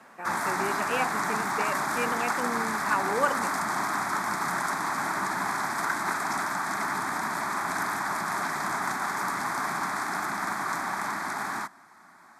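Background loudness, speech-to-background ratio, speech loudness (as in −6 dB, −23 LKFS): −29.0 LKFS, −3.5 dB, −32.5 LKFS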